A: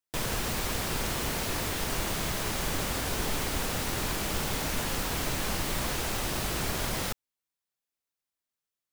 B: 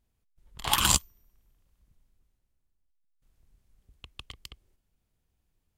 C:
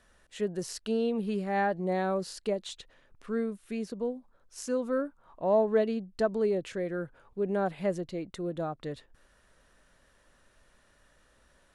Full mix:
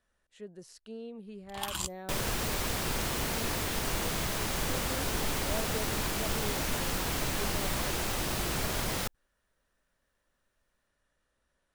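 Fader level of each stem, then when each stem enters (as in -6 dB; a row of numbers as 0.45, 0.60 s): -1.0, -12.5, -14.0 dB; 1.95, 0.90, 0.00 s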